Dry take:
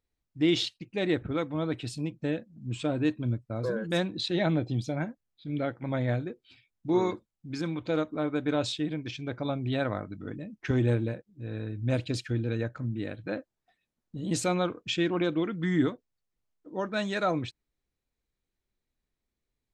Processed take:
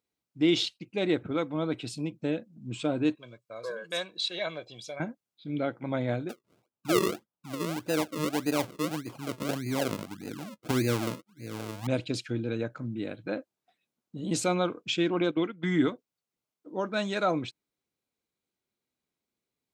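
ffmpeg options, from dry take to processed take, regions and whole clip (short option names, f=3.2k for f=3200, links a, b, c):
-filter_complex "[0:a]asettb=1/sr,asplit=3[a][b][c];[a]atrim=end=3.154[d];[b]atrim=start=3.15:end=5,asetpts=PTS-STARTPTS,afade=t=in:d=0.004:c=qsin,afade=t=out:st=1.846:d=0.004:c=qsin,highpass=f=1.4k:p=1,aecho=1:1:1.8:0.64,atrim=end_sample=81585[e];[c]atrim=start=4.996[f];[d][e]acrossfade=d=0.004:c1=hsin:c2=qsin[g];[g][f]acrossfade=d=0.004:c1=qsin:c2=hsin,asettb=1/sr,asplit=3[h][i][j];[h]atrim=end=6.294[k];[i]atrim=start=6.29:end=11.87,asetpts=PTS-STARTPTS,afade=t=in:d=0.004:c=qsin,afade=t=out:st=5.576:d=0.004:c=qsin,equalizer=f=5.7k:w=0.4:g=-14,acrusher=samples=39:mix=1:aa=0.000001:lfo=1:lforange=39:lforate=1.7[l];[j]atrim=start=11.866[m];[k][l]acrossfade=d=0.004:c1=hsin:c2=qsin[n];[n][m]acrossfade=d=0.004:c1=qsin:c2=hsin,asettb=1/sr,asplit=3[o][p][q];[o]atrim=end=15.314[r];[p]atrim=start=15.31:end=15.91,asetpts=PTS-STARTPTS,afade=t=in:d=0.004:c=qsin,afade=t=out:st=0.596:d=0.004:c=qsin,agate=range=-14dB:threshold=-32dB:ratio=16:release=100:detection=peak,equalizer=f=2.2k:t=o:w=1.4:g=4.5[s];[q]atrim=start=15.906[t];[r][s]acrossfade=d=0.004:c1=hsin:c2=qsin[u];[u][t]acrossfade=d=0.004:c1=qsin:c2=hsin,highpass=160,bandreject=f=1.8k:w=8.3,volume=1dB"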